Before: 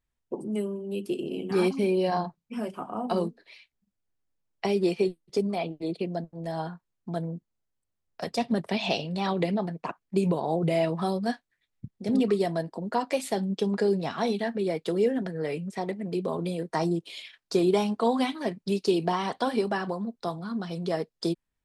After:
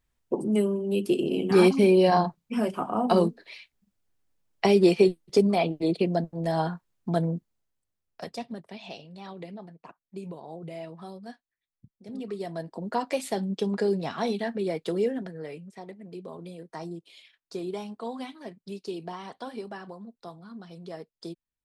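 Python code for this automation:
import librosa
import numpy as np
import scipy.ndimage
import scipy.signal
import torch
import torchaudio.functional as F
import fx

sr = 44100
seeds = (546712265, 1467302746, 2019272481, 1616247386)

y = fx.gain(x, sr, db=fx.line((7.3, 6.0), (8.22, -4.0), (8.64, -14.0), (12.14, -14.0), (12.81, -1.0), (14.96, -1.0), (15.72, -11.0)))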